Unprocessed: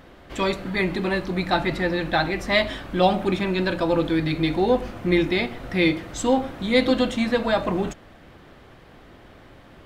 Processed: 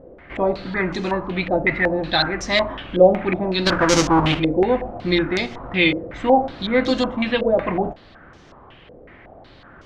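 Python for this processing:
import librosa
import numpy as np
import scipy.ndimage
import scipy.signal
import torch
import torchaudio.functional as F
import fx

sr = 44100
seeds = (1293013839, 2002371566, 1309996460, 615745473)

y = fx.halfwave_hold(x, sr, at=(3.65, 4.38), fade=0.02)
y = fx.filter_held_lowpass(y, sr, hz=5.4, low_hz=510.0, high_hz=6100.0)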